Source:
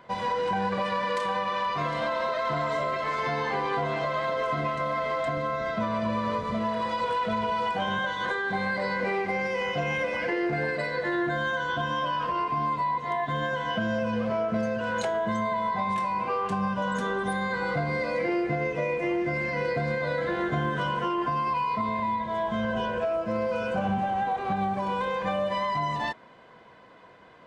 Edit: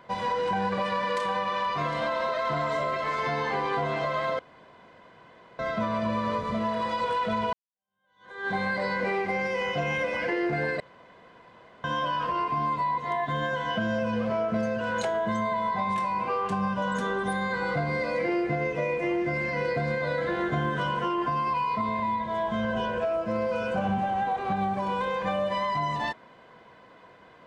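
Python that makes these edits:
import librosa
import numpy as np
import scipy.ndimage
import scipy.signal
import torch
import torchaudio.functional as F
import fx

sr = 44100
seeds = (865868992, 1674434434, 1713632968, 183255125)

y = fx.edit(x, sr, fx.room_tone_fill(start_s=4.39, length_s=1.2),
    fx.fade_in_span(start_s=7.53, length_s=0.94, curve='exp'),
    fx.room_tone_fill(start_s=10.8, length_s=1.04), tone=tone)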